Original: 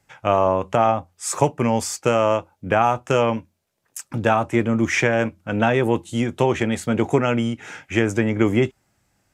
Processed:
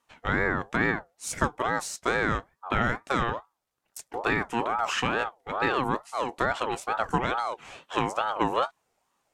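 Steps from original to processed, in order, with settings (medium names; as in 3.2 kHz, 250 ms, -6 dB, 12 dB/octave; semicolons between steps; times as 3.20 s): 4.50–4.96 s: transient shaper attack -3 dB, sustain +5 dB; ring modulator with a swept carrier 830 Hz, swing 30%, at 2.3 Hz; trim -5 dB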